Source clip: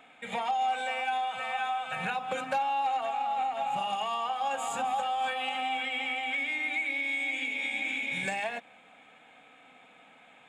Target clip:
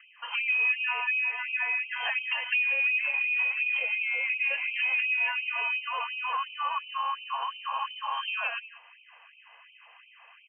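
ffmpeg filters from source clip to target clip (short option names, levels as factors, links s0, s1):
-filter_complex "[0:a]asplit=2[s0][s1];[s1]adelay=186.6,volume=0.178,highshelf=f=4000:g=-4.2[s2];[s0][s2]amix=inputs=2:normalize=0,lowpass=f=2800:t=q:w=0.5098,lowpass=f=2800:t=q:w=0.6013,lowpass=f=2800:t=q:w=0.9,lowpass=f=2800:t=q:w=2.563,afreqshift=-3300,afftfilt=real='re*gte(b*sr/1024,430*pow(2300/430,0.5+0.5*sin(2*PI*2.8*pts/sr)))':imag='im*gte(b*sr/1024,430*pow(2300/430,0.5+0.5*sin(2*PI*2.8*pts/sr)))':win_size=1024:overlap=0.75,volume=1.33"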